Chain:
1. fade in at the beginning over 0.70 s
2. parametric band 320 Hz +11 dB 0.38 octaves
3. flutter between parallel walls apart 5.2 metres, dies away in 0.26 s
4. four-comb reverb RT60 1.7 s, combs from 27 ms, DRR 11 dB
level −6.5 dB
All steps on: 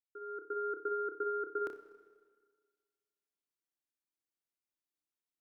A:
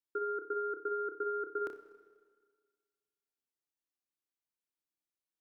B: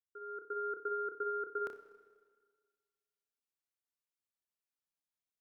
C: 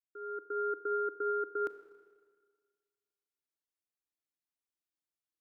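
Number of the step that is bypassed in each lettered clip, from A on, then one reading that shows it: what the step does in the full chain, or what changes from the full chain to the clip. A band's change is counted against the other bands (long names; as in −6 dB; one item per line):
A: 1, change in momentary loudness spread −5 LU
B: 2, change in integrated loudness −1.0 LU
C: 3, change in crest factor −1.5 dB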